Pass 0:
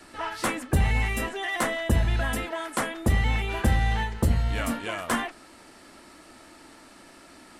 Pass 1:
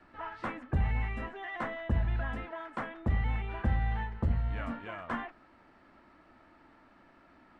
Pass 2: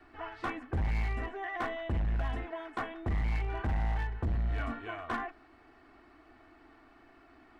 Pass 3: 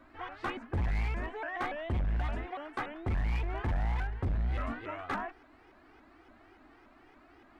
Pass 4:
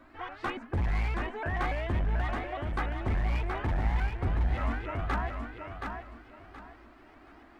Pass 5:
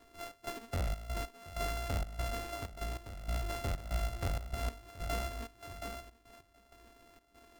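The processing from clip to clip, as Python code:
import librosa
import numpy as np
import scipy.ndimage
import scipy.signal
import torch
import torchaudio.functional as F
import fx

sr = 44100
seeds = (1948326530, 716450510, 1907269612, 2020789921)

y1 = scipy.signal.sosfilt(scipy.signal.butter(2, 1700.0, 'lowpass', fs=sr, output='sos'), x)
y1 = fx.peak_eq(y1, sr, hz=410.0, db=-5.5, octaves=1.5)
y1 = F.gain(torch.from_numpy(y1), -6.0).numpy()
y2 = y1 + 0.72 * np.pad(y1, (int(2.7 * sr / 1000.0), 0))[:len(y1)]
y2 = np.clip(y2, -10.0 ** (-27.5 / 20.0), 10.0 ** (-27.5 / 20.0))
y3 = fx.vibrato_shape(y2, sr, shape='saw_up', rate_hz=3.5, depth_cents=250.0)
y4 = fx.echo_feedback(y3, sr, ms=724, feedback_pct=28, wet_db=-5.0)
y4 = F.gain(torch.from_numpy(y4), 2.0).numpy()
y5 = np.r_[np.sort(y4[:len(y4) // 64 * 64].reshape(-1, 64), axis=1).ravel(), y4[len(y4) // 64 * 64:]]
y5 = fx.step_gate(y5, sr, bpm=96, pattern='xx.xxx.x..x', floor_db=-12.0, edge_ms=4.5)
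y5 = F.gain(torch.from_numpy(y5), -5.5).numpy()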